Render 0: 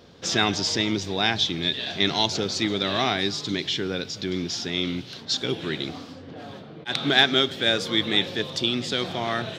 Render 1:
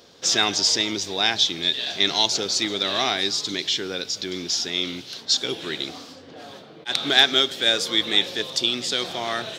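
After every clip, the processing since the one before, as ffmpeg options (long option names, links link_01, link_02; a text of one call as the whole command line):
ffmpeg -i in.wav -af "bass=frequency=250:gain=-10,treble=frequency=4000:gain=9" out.wav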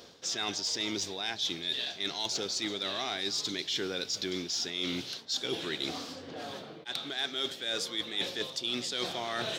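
ffmpeg -i in.wav -af "areverse,acompressor=threshold=-29dB:ratio=12,areverse,asoftclip=type=tanh:threshold=-19.5dB" out.wav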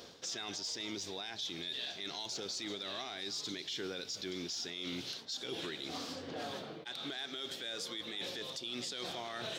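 ffmpeg -i in.wav -af "alimiter=level_in=7.5dB:limit=-24dB:level=0:latency=1:release=99,volume=-7.5dB" out.wav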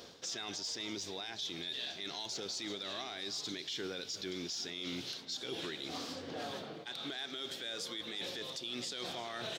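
ffmpeg -i in.wav -af "aecho=1:1:349:0.126" out.wav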